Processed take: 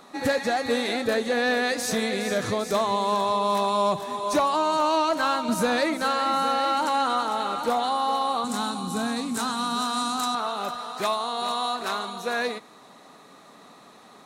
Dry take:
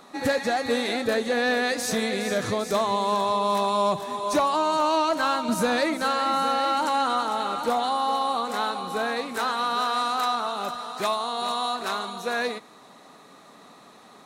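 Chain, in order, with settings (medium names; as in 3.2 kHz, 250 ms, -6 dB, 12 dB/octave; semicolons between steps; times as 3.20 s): 8.44–10.35 s: graphic EQ 125/250/500/2000/8000 Hz +11/+8/-9/-7/+10 dB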